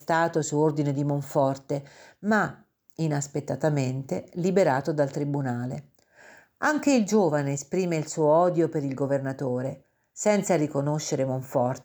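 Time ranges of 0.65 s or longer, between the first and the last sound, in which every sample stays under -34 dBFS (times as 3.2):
5.8–6.62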